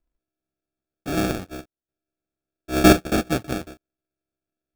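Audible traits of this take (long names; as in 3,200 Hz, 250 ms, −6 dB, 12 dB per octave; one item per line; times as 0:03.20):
a buzz of ramps at a fixed pitch in blocks of 64 samples
chopped level 0.53 Hz, depth 65%, duty 55%
aliases and images of a low sample rate 1,000 Hz, jitter 0%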